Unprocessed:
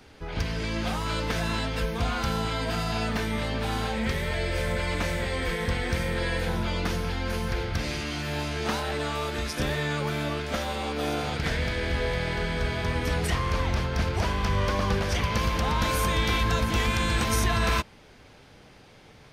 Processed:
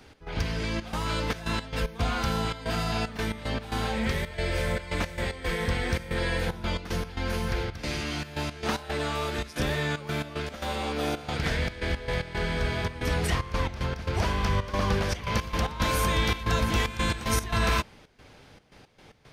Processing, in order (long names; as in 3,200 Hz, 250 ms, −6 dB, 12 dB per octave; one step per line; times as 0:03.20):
gate pattern "x.xxxx.xxx.x." 113 BPM −12 dB